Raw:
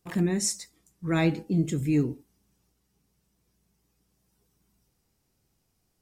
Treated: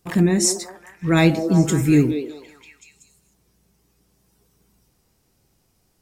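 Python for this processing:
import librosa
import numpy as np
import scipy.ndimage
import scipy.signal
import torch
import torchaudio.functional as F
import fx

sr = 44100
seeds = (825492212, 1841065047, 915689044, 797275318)

y = fx.high_shelf(x, sr, hz=5500.0, db=8.0, at=(1.17, 2.11))
y = fx.echo_stepped(y, sr, ms=189, hz=470.0, octaves=0.7, feedback_pct=70, wet_db=-4.0)
y = F.gain(torch.from_numpy(y), 8.5).numpy()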